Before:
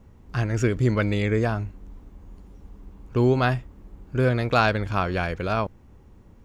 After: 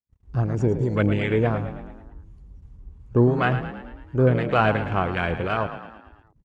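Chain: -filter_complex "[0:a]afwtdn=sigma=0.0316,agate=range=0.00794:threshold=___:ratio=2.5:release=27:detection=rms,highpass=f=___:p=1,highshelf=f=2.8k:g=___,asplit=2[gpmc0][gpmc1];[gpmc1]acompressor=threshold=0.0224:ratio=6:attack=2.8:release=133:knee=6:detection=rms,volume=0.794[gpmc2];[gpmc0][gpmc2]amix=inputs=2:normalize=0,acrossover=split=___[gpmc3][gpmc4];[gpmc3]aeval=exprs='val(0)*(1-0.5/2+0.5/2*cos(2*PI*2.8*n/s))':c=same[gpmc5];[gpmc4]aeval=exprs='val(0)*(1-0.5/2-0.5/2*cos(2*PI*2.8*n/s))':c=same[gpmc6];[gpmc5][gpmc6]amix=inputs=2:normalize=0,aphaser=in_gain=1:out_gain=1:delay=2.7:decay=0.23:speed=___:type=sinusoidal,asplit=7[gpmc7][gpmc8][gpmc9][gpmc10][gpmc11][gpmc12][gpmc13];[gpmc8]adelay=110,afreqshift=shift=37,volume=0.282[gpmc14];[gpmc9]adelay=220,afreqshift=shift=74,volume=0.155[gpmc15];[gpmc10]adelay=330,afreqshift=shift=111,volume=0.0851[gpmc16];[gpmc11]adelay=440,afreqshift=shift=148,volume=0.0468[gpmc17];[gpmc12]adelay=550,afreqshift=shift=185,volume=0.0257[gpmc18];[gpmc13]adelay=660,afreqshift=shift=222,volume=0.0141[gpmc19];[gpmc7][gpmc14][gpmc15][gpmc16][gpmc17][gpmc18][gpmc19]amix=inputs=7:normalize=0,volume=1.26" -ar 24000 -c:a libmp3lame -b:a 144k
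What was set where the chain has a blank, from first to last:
0.00316, 70, 2.5, 980, 1.9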